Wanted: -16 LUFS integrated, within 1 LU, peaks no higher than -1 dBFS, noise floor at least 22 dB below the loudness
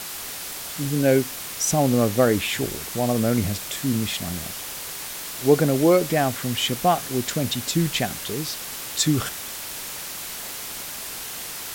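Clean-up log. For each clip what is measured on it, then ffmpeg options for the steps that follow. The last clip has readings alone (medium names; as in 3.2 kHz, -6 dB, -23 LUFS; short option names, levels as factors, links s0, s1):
noise floor -34 dBFS; noise floor target -46 dBFS; loudness -24.0 LUFS; peak level -4.5 dBFS; loudness target -16.0 LUFS
-> -af "afftdn=nr=12:nf=-34"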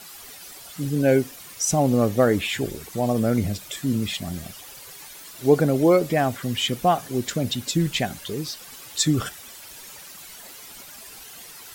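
noise floor -43 dBFS; noise floor target -45 dBFS
-> -af "afftdn=nr=6:nf=-43"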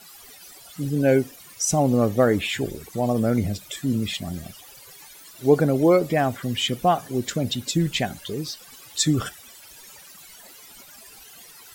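noise floor -47 dBFS; loudness -23.0 LUFS; peak level -5.0 dBFS; loudness target -16.0 LUFS
-> -af "volume=2.24,alimiter=limit=0.891:level=0:latency=1"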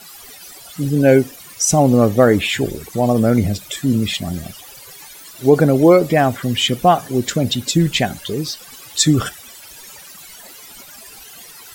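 loudness -16.5 LUFS; peak level -1.0 dBFS; noise floor -40 dBFS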